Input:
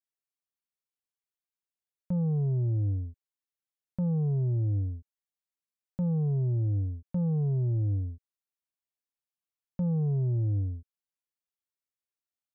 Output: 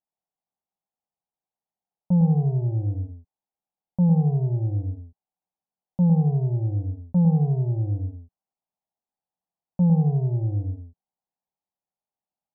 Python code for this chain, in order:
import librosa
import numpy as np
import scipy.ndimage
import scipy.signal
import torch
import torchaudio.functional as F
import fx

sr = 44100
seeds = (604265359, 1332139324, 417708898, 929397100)

p1 = fx.lowpass_res(x, sr, hz=800.0, q=4.9)
p2 = fx.peak_eq(p1, sr, hz=180.0, db=10.0, octaves=0.53)
y = p2 + fx.echo_single(p2, sr, ms=106, db=-5.5, dry=0)